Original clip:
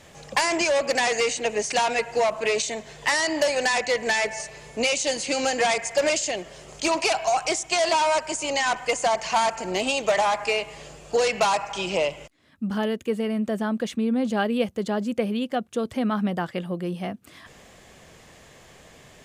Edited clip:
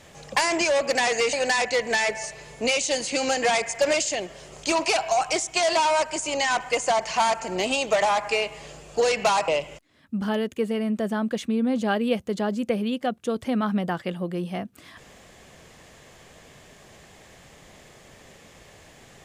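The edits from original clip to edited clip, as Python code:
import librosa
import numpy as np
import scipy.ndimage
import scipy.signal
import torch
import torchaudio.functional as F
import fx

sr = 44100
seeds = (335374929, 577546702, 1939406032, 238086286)

y = fx.edit(x, sr, fx.cut(start_s=1.33, length_s=2.16),
    fx.cut(start_s=11.64, length_s=0.33), tone=tone)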